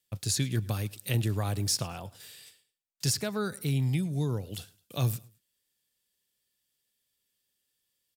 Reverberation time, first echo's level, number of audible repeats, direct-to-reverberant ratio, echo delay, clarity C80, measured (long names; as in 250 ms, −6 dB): no reverb audible, −23.0 dB, 2, no reverb audible, 107 ms, no reverb audible